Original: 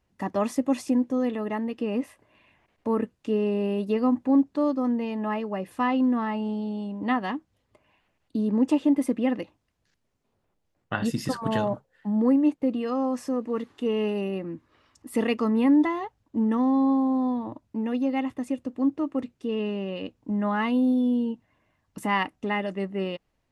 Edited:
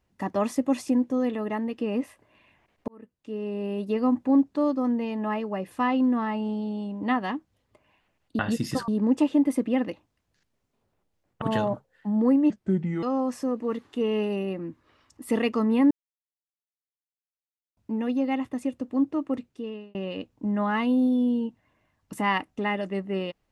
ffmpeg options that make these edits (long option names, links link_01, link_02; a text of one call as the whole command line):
ffmpeg -i in.wav -filter_complex "[0:a]asplit=10[link_01][link_02][link_03][link_04][link_05][link_06][link_07][link_08][link_09][link_10];[link_01]atrim=end=2.88,asetpts=PTS-STARTPTS,afade=type=out:start_time=2.876:duration=0.004:curve=hsin[link_11];[link_02]atrim=start=2.88:end=8.392,asetpts=PTS-STARTPTS,afade=type=in:duration=1.25[link_12];[link_03]atrim=start=10.928:end=11.422[link_13];[link_04]atrim=start=8.388:end=10.932[link_14];[link_05]atrim=start=11.418:end=12.504[link_15];[link_06]atrim=start=12.5:end=12.88,asetpts=PTS-STARTPTS,asetrate=31752,aresample=44100[link_16];[link_07]atrim=start=12.876:end=15.76,asetpts=PTS-STARTPTS,afade=type=out:start_time=2.88:duration=0.004:curve=hsin[link_17];[link_08]atrim=start=15.76:end=17.62,asetpts=PTS-STARTPTS,volume=0[link_18];[link_09]atrim=start=17.62:end=19.8,asetpts=PTS-STARTPTS,afade=type=in:duration=0.004:curve=hsin,afade=type=out:start_time=1.6:duration=0.58[link_19];[link_10]atrim=start=19.8,asetpts=PTS-STARTPTS,afade=type=in:duration=0.004:curve=hsin[link_20];[link_11][link_12]concat=n=2:v=0:a=1[link_21];[link_21][link_13]acrossfade=duration=0.004:curve1=hsin:curve2=hsin[link_22];[link_22][link_14]acrossfade=duration=0.004:curve1=hsin:curve2=hsin[link_23];[link_23][link_15]acrossfade=duration=0.004:curve1=hsin:curve2=hsin[link_24];[link_24][link_16]acrossfade=duration=0.004:curve1=hsin:curve2=hsin[link_25];[link_17][link_18][link_19][link_20]concat=n=4:v=0:a=1[link_26];[link_25][link_26]acrossfade=duration=0.004:curve1=hsin:curve2=hsin" out.wav